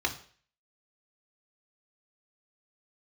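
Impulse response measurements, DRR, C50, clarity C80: 2.0 dB, 12.5 dB, 17.0 dB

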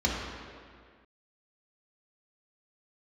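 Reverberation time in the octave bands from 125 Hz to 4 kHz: 1.7, 2.0, 1.9, 2.0, 1.9, 1.5 seconds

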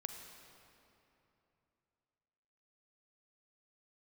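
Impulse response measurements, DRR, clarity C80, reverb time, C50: 5.0 dB, 6.0 dB, 3.0 s, 5.5 dB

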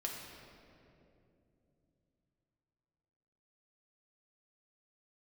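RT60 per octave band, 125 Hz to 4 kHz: 4.5, 4.1, 3.4, 2.3, 2.0, 1.6 seconds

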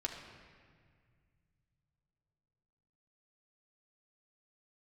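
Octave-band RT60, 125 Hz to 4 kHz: 4.2, 2.8, 2.0, 1.8, 1.9, 1.4 seconds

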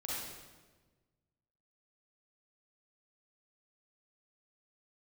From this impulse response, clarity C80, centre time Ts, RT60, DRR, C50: 0.0 dB, 103 ms, 1.3 s, −7.0 dB, −4.0 dB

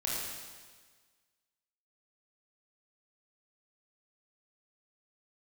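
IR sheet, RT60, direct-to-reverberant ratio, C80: 1.5 s, −6.0 dB, 0.5 dB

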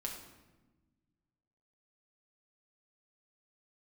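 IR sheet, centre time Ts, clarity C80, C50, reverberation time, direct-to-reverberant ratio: 36 ms, 7.5 dB, 5.0 dB, 1.2 s, −0.5 dB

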